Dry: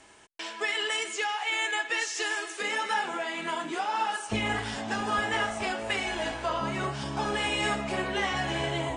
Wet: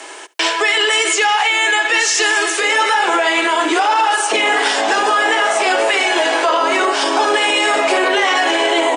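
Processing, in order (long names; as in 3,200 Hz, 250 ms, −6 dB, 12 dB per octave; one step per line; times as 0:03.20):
Butterworth high-pass 310 Hz 48 dB per octave
single-tap delay 71 ms −22.5 dB
boost into a limiter +27.5 dB
level −5.5 dB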